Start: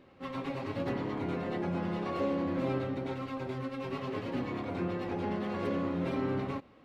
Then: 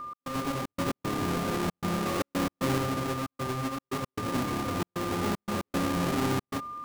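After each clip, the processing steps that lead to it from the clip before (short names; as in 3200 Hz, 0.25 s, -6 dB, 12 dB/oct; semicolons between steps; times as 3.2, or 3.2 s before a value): half-waves squared off; whine 1200 Hz -36 dBFS; step gate "x.xxx.x.xxxx" 115 bpm -60 dB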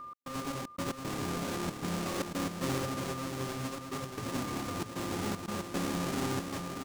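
dynamic EQ 7000 Hz, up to +5 dB, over -50 dBFS, Q 0.78; on a send: feedback echo 0.632 s, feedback 30%, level -6 dB; on the sum: gain -6 dB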